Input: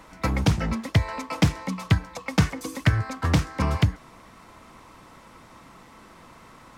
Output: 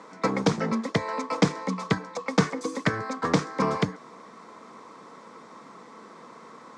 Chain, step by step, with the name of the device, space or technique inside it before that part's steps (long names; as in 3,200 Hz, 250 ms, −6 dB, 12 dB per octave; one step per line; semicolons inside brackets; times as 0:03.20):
television speaker (loudspeaker in its box 170–7,900 Hz, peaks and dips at 220 Hz +3 dB, 450 Hz +10 dB, 1,100 Hz +5 dB, 2,800 Hz −8 dB)